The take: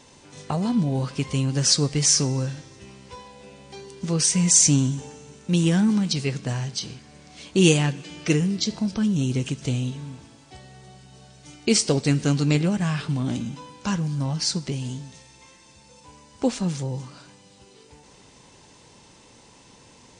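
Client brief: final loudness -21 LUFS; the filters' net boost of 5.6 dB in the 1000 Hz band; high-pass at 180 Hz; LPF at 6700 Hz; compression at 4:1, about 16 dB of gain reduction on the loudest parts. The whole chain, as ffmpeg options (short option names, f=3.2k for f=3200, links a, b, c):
-af "highpass=180,lowpass=6.7k,equalizer=f=1k:t=o:g=7,acompressor=threshold=-34dB:ratio=4,volume=16dB"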